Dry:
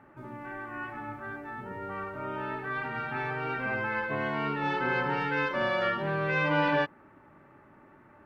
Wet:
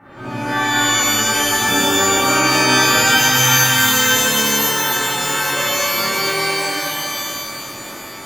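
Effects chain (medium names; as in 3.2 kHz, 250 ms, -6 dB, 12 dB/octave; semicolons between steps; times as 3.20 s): 1.62–2.21 s: peaking EQ 290 Hz +14 dB 0.42 oct; 2.98–4.12 s: Chebyshev band-stop 200–890 Hz, order 4; compressor with a negative ratio -36 dBFS, ratio -1; feedback echo behind a band-pass 113 ms, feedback 73%, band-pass 570 Hz, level -5 dB; pitch-shifted reverb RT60 1.9 s, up +12 st, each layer -2 dB, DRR -11 dB; trim +2.5 dB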